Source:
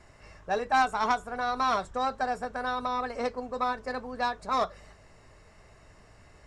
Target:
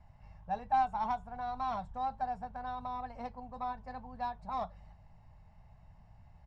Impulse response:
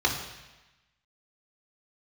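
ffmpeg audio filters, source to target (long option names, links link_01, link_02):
-af "firequalizer=gain_entry='entry(170,0);entry(360,-25);entry(830,-1);entry(1200,-17);entry(3000,-15);entry(8100,-27)':delay=0.05:min_phase=1"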